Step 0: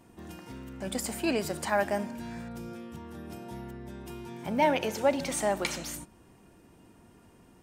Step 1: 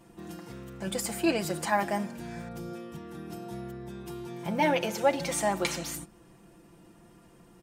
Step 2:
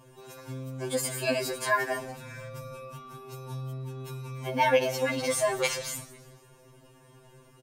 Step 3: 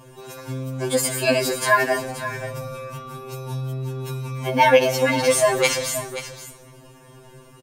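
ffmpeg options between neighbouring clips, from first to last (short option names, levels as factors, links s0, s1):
-af "aecho=1:1:5.9:0.67"
-filter_complex "[0:a]asplit=5[s0][s1][s2][s3][s4];[s1]adelay=167,afreqshift=-48,volume=0.1[s5];[s2]adelay=334,afreqshift=-96,volume=0.0513[s6];[s3]adelay=501,afreqshift=-144,volume=0.026[s7];[s4]adelay=668,afreqshift=-192,volume=0.0133[s8];[s0][s5][s6][s7][s8]amix=inputs=5:normalize=0,afftfilt=real='re*2.45*eq(mod(b,6),0)':imag='im*2.45*eq(mod(b,6),0)':win_size=2048:overlap=0.75,volume=1.68"
-af "aecho=1:1:529:0.237,volume=2.66"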